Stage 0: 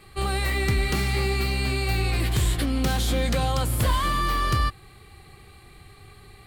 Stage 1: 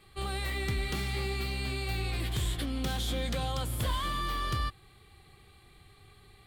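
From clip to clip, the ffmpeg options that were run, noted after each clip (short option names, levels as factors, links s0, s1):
-af "equalizer=f=3400:t=o:w=0.27:g=7,volume=0.355"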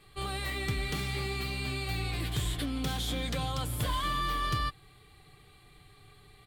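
-af "aecho=1:1:6.8:0.38"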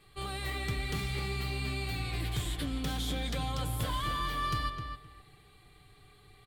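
-filter_complex "[0:a]asplit=2[s0][s1];[s1]adelay=259,lowpass=f=2500:p=1,volume=0.501,asplit=2[s2][s3];[s3]adelay=259,lowpass=f=2500:p=1,volume=0.21,asplit=2[s4][s5];[s5]adelay=259,lowpass=f=2500:p=1,volume=0.21[s6];[s0][s2][s4][s6]amix=inputs=4:normalize=0,volume=0.75"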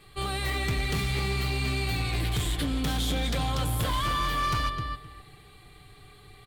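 -af "asoftclip=type=hard:threshold=0.0316,volume=2.24"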